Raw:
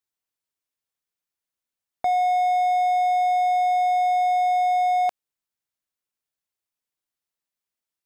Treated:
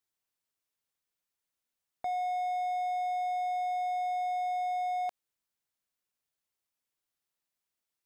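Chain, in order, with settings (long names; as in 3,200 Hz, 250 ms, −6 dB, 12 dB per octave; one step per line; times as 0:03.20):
brickwall limiter −27 dBFS, peak gain reduction 11.5 dB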